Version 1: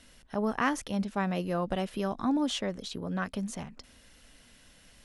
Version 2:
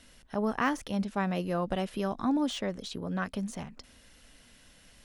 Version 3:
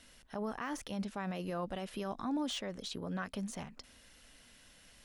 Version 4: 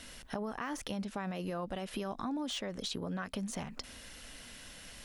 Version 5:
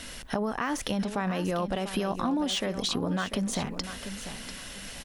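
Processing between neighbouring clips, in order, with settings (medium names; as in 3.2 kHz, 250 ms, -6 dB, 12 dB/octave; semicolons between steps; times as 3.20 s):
de-esser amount 90%
bass shelf 470 Hz -4 dB; peak limiter -27.5 dBFS, peak gain reduction 11 dB; trim -1.5 dB
compression, threshold -45 dBFS, peak gain reduction 12.5 dB; trim +10 dB
feedback delay 694 ms, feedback 26%, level -11 dB; trim +8.5 dB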